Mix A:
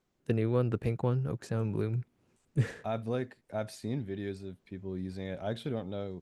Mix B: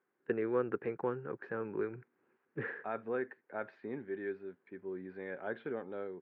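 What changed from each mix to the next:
master: add speaker cabinet 380–2100 Hz, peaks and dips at 390 Hz +4 dB, 640 Hz -8 dB, 1600 Hz +7 dB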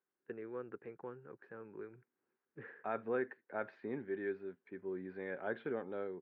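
first voice -12.0 dB

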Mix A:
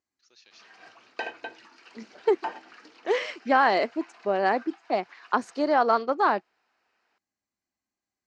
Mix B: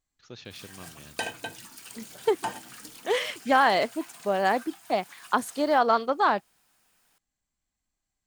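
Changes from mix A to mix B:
first voice: remove differentiator; background: remove three-band isolator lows -15 dB, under 310 Hz, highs -23 dB, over 4600 Hz; master: remove speaker cabinet 130–6000 Hz, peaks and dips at 150 Hz -10 dB, 360 Hz +5 dB, 3400 Hz -9 dB

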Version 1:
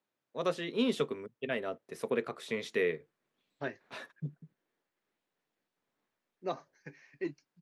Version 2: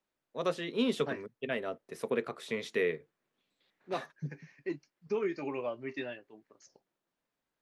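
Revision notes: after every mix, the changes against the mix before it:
second voice: entry -2.55 s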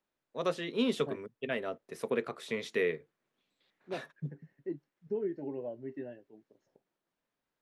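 second voice: add running mean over 37 samples

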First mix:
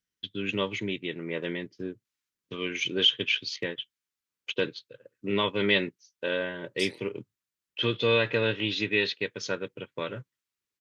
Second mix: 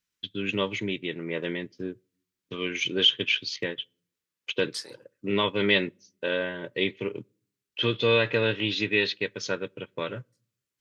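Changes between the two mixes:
second voice: entry -2.05 s; reverb: on, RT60 0.55 s

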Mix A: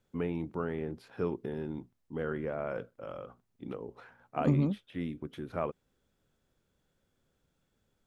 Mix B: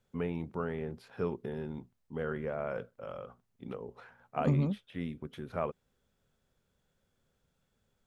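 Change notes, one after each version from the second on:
master: add bell 310 Hz -9.5 dB 0.26 oct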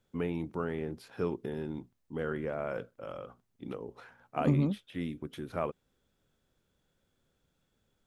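first voice: add high shelf 4300 Hz +9 dB; master: add bell 310 Hz +9.5 dB 0.26 oct

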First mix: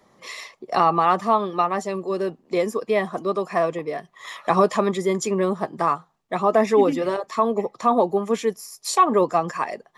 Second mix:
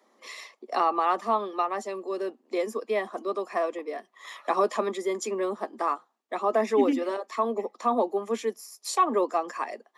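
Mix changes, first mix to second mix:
first voice -6.0 dB; master: add steep high-pass 220 Hz 72 dB/oct

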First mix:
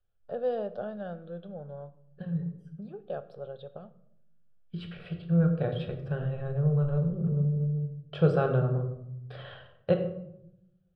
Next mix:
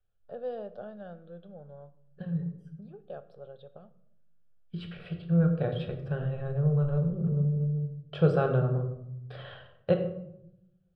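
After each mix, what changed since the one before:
first voice -6.0 dB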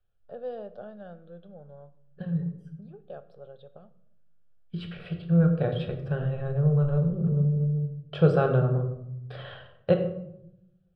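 second voice +3.0 dB

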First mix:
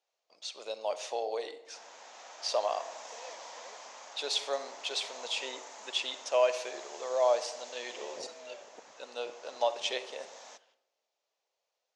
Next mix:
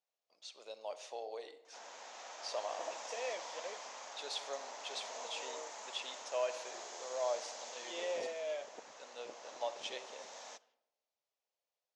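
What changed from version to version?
first voice -10.0 dB; second voice +9.0 dB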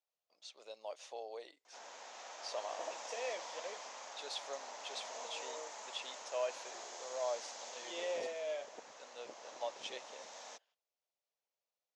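reverb: off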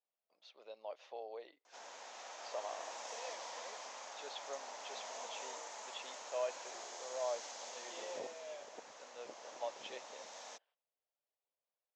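first voice: add air absorption 240 m; second voice -9.0 dB

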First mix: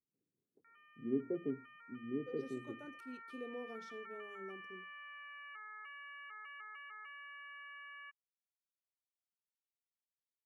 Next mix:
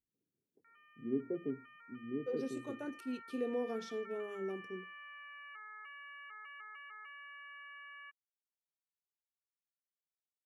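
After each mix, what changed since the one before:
second voice +9.5 dB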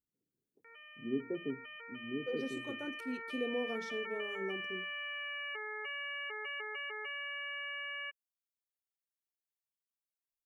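background: remove ladder band-pass 1400 Hz, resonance 60%

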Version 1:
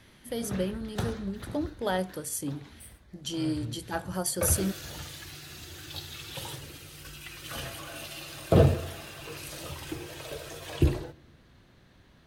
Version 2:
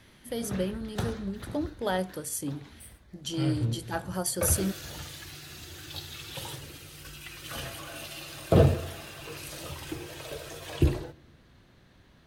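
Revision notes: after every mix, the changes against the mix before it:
second voice +8.5 dB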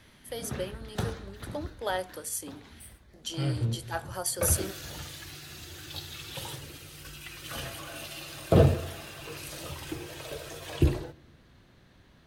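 first voice: add HPF 480 Hz 12 dB/oct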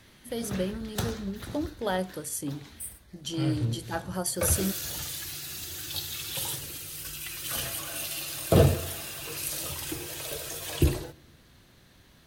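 first voice: remove HPF 480 Hz 12 dB/oct; background: remove LPF 2400 Hz 6 dB/oct

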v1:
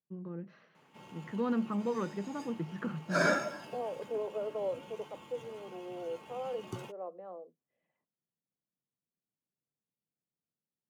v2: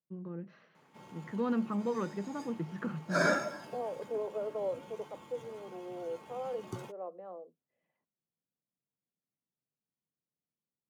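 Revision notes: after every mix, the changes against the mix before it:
background: add bell 2800 Hz -8.5 dB 0.28 oct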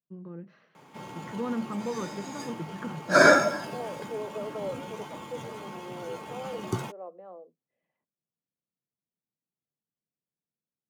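background +11.5 dB

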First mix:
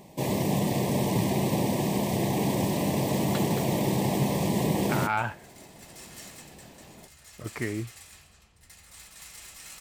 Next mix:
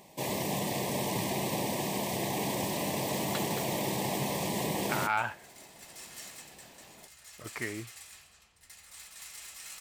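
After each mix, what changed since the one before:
master: add low shelf 460 Hz -11 dB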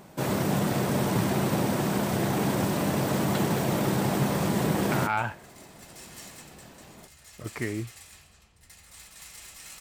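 first sound: remove Butterworth band-stop 1400 Hz, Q 1.7; master: add low shelf 460 Hz +11 dB

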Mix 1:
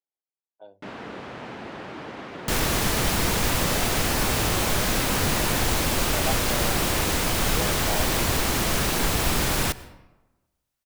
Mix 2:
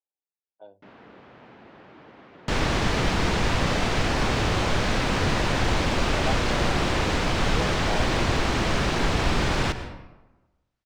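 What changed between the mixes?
first sound -11.0 dB; second sound: send +9.0 dB; master: add air absorption 130 m

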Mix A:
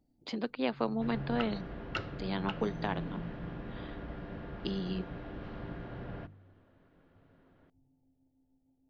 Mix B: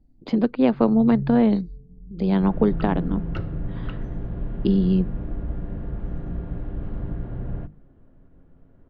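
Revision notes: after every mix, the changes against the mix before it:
speech +8.0 dB; second sound: entry +1.40 s; master: add tilt -4 dB/oct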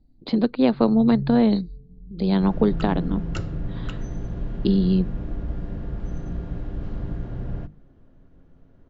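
speech: add bell 4100 Hz +15 dB 0.44 oct; second sound: remove Gaussian blur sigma 2.9 samples; master: add air absorption 77 m

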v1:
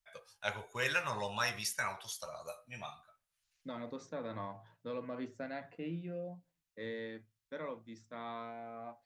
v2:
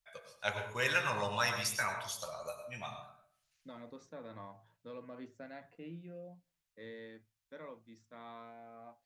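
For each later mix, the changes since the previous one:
second voice -6.5 dB; reverb: on, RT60 0.55 s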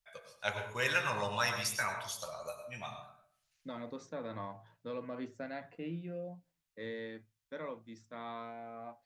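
second voice +6.5 dB

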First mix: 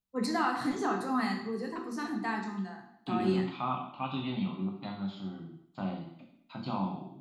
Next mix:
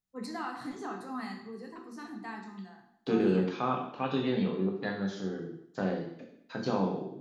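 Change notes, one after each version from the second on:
first voice -8.0 dB; second voice: remove fixed phaser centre 1700 Hz, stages 6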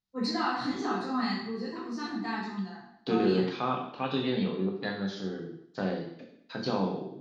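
first voice: send +10.0 dB; master: add synth low-pass 4600 Hz, resonance Q 2

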